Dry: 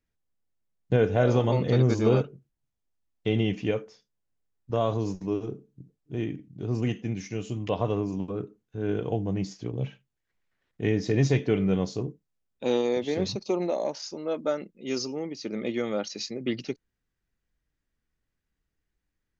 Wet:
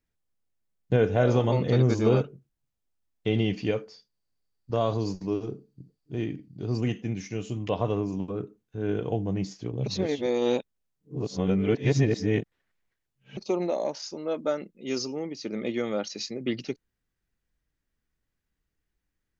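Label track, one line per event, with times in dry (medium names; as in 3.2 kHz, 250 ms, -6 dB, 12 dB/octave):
3.330000	6.780000	peaking EQ 4.6 kHz +15 dB 0.2 oct
9.860000	13.370000	reverse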